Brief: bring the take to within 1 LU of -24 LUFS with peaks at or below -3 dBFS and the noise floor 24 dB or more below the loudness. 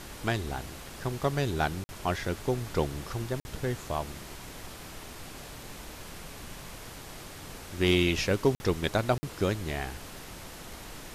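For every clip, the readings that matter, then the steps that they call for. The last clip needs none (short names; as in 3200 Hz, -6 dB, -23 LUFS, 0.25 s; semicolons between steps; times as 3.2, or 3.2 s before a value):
dropouts 4; longest dropout 50 ms; noise floor -45 dBFS; noise floor target -55 dBFS; loudness -30.5 LUFS; peak -12.5 dBFS; loudness target -24.0 LUFS
-> interpolate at 1.84/3.4/8.55/9.18, 50 ms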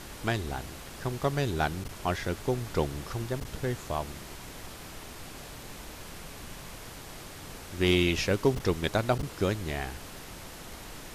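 dropouts 0; noise floor -45 dBFS; noise floor target -55 dBFS
-> noise print and reduce 10 dB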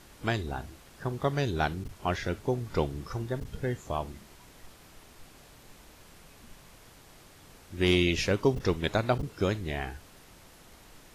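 noise floor -55 dBFS; loudness -30.5 LUFS; peak -12.5 dBFS; loudness target -24.0 LUFS
-> gain +6.5 dB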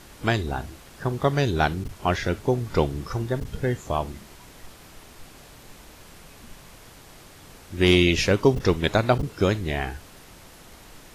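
loudness -24.0 LUFS; peak -6.0 dBFS; noise floor -48 dBFS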